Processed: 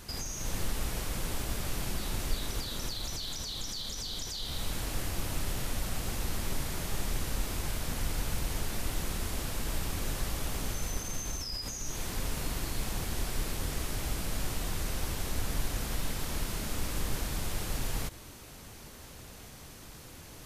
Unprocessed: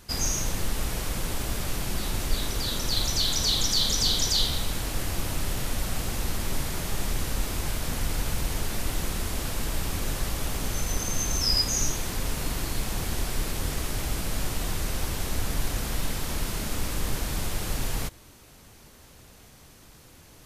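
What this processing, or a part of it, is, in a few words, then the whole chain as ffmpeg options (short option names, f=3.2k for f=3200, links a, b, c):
de-esser from a sidechain: -filter_complex "[0:a]asplit=2[a][b];[b]highpass=f=4k:p=1,apad=whole_len=902199[c];[a][c]sidechaincompress=threshold=-40dB:ratio=8:attack=0.59:release=80,volume=3dB"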